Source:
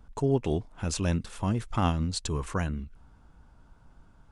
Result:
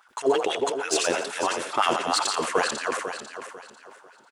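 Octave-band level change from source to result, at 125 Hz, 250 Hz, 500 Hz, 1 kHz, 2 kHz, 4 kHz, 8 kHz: -20.5 dB, -3.5 dB, +8.0 dB, +10.5 dB, +13.0 dB, +11.5 dB, +10.0 dB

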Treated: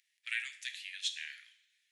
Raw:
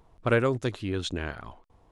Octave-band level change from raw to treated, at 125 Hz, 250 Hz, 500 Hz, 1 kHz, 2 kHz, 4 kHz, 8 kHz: under -40 dB, under -40 dB, under -40 dB, under -30 dB, -5.5 dB, 0.0 dB, +1.0 dB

